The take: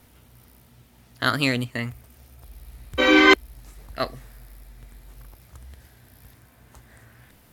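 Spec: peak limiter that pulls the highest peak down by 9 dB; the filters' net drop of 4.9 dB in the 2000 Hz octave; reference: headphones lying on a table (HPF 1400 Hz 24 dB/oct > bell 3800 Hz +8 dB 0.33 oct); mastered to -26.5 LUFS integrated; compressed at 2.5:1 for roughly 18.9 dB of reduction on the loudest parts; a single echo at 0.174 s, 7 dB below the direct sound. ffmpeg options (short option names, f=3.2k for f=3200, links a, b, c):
-af "equalizer=f=2k:t=o:g=-5.5,acompressor=threshold=-42dB:ratio=2.5,alimiter=level_in=8dB:limit=-24dB:level=0:latency=1,volume=-8dB,highpass=f=1.4k:w=0.5412,highpass=f=1.4k:w=1.3066,equalizer=f=3.8k:t=o:w=0.33:g=8,aecho=1:1:174:0.447,volume=23.5dB"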